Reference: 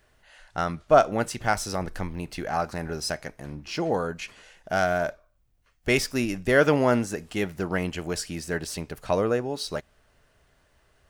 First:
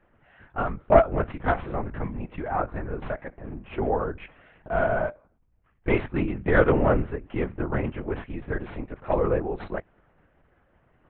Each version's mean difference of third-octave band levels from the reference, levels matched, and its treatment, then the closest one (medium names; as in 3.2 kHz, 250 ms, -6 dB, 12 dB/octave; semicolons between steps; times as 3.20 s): 9.0 dB: tracing distortion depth 0.19 ms; Bessel low-pass 1.6 kHz, order 4; LPC vocoder at 8 kHz whisper; trim +1 dB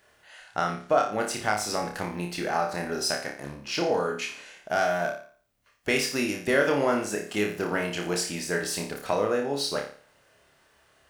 6.0 dB: high-pass 310 Hz 6 dB/octave; compression 2:1, threshold -28 dBFS, peak gain reduction 9 dB; flutter echo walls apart 4.9 m, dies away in 0.44 s; trim +2.5 dB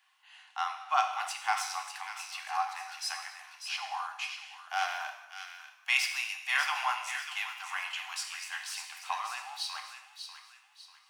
18.0 dB: rippled Chebyshev high-pass 740 Hz, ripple 9 dB; on a send: feedback echo behind a high-pass 593 ms, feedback 36%, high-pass 1.6 kHz, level -7.5 dB; on the sum: gated-style reverb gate 330 ms falling, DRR 4 dB; trim +1.5 dB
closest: second